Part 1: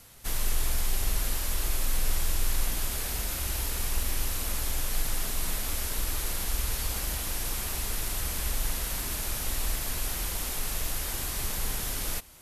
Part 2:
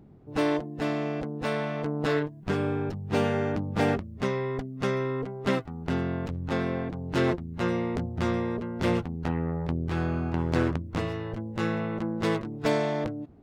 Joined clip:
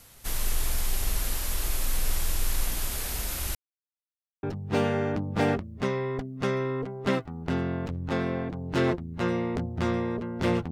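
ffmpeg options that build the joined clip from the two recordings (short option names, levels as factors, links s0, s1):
-filter_complex "[0:a]apad=whole_dur=10.71,atrim=end=10.71,asplit=2[s0][s1];[s0]atrim=end=3.55,asetpts=PTS-STARTPTS,afade=t=out:st=3.546:d=0.004:c=hsin[s2];[s1]atrim=start=3.55:end=4.43,asetpts=PTS-STARTPTS,volume=0[s3];[1:a]atrim=start=2.83:end=9.11,asetpts=PTS-STARTPTS,afade=t=in:d=0.004:c=hsin[s4];[s2][s3][s4]concat=n=3:v=0:a=1"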